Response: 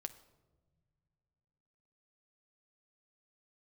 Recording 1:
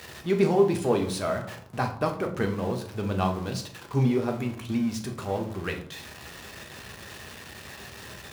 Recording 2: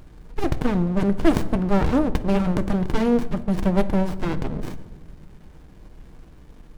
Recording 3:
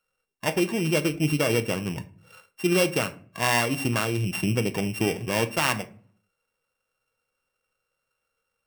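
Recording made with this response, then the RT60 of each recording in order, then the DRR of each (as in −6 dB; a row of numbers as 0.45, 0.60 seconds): 2; 0.65 s, non-exponential decay, 0.50 s; 3.0, 9.5, 9.0 decibels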